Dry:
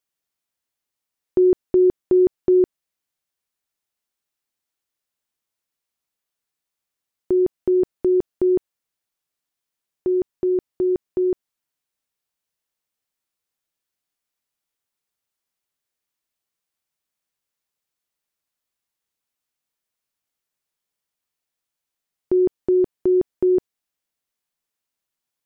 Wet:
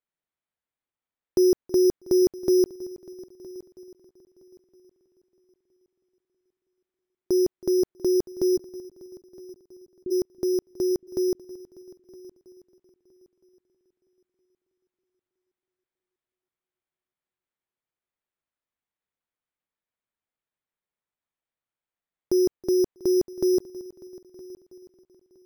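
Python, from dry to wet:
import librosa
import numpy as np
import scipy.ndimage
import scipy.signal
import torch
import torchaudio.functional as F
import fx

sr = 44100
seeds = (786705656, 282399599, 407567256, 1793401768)

y = np.repeat(scipy.signal.resample_poly(x, 1, 8), 8)[:len(x)]
y = fx.ladder_lowpass(y, sr, hz=400.0, resonance_pct=25, at=(8.56, 10.1), fade=0.02)
y = fx.echo_heads(y, sr, ms=322, heads='first and third', feedback_pct=42, wet_db=-20)
y = F.gain(torch.from_numpy(y), -3.5).numpy()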